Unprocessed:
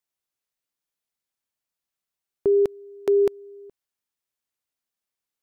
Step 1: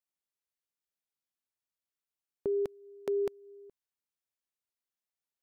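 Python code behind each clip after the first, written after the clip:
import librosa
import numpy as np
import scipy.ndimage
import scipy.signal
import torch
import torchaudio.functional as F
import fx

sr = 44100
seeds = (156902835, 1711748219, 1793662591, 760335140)

y = fx.dynamic_eq(x, sr, hz=350.0, q=2.4, threshold_db=-34.0, ratio=4.0, max_db=-5)
y = F.gain(torch.from_numpy(y), -8.5).numpy()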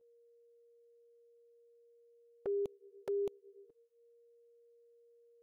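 y = x + 10.0 ** (-59.0 / 20.0) * np.sin(2.0 * np.pi * 470.0 * np.arange(len(x)) / sr)
y = fx.env_flanger(y, sr, rest_ms=12.0, full_db=-30.5)
y = F.gain(torch.from_numpy(y), -4.0).numpy()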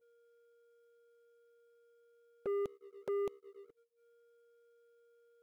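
y = fx.leveller(x, sr, passes=2)
y = F.gain(torch.from_numpy(y), -3.5).numpy()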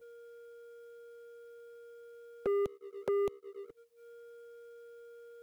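y = fx.band_squash(x, sr, depth_pct=40)
y = F.gain(torch.from_numpy(y), 9.0).numpy()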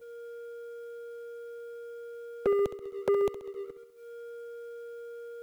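y = fx.echo_feedback(x, sr, ms=66, feedback_pct=57, wet_db=-12.0)
y = F.gain(torch.from_numpy(y), 6.0).numpy()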